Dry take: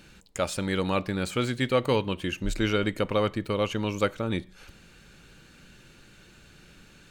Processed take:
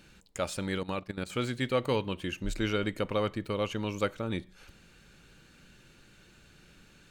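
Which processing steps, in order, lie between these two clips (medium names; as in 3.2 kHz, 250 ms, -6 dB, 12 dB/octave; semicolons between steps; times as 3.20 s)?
0.78–1.30 s: level held to a coarse grid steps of 14 dB; trim -4.5 dB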